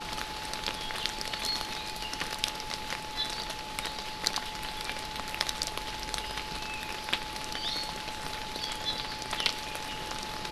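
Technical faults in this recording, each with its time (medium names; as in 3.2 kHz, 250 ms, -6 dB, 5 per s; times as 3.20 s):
whine 860 Hz -41 dBFS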